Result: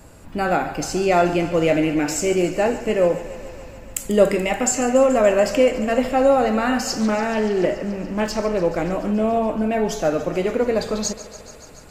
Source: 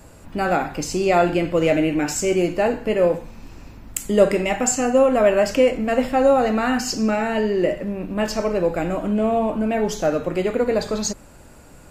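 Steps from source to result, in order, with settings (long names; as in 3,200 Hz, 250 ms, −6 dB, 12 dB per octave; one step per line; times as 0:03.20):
feedback echo with a high-pass in the loop 143 ms, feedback 80%, high-pass 260 Hz, level −15 dB
0:06.99–0:08.92: highs frequency-modulated by the lows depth 0.19 ms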